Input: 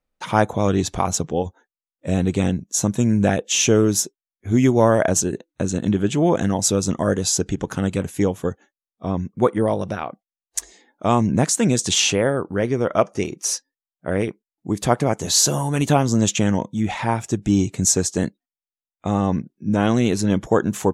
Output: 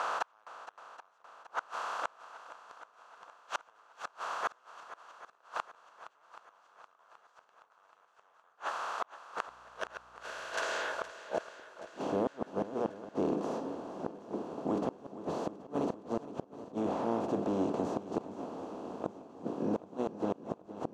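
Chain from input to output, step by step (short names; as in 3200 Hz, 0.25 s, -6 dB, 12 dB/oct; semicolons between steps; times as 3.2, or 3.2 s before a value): per-bin compression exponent 0.2; notches 60/120/180/240/300/360/420 Hz; 9.6–11.6 spectral gain 680–1400 Hz -10 dB; graphic EQ 125/250/1000/2000/8000 Hz -10/-10/+7/-4/-4 dB; in parallel at -3.5 dB: wavefolder -14 dBFS; on the sum: band-pass sweep 1400 Hz -> 260 Hz, 10.92–12.02; flipped gate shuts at -11 dBFS, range -40 dB; 9.46–11.1 buzz 60 Hz, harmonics 29, -62 dBFS -4 dB/oct; on a send: swung echo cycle 0.777 s, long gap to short 1.5:1, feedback 51%, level -14.5 dB; on the sum: gain -9 dB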